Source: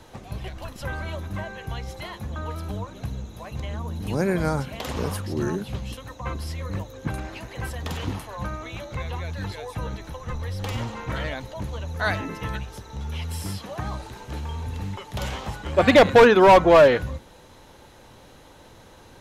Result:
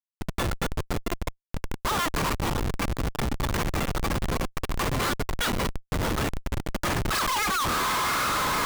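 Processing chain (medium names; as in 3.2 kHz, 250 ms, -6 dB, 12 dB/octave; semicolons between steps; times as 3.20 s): steep high-pass 400 Hz 96 dB/octave; echo that smears into a reverb 1471 ms, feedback 72%, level -10 dB; wide varispeed 2.22×; Schmitt trigger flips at -30 dBFS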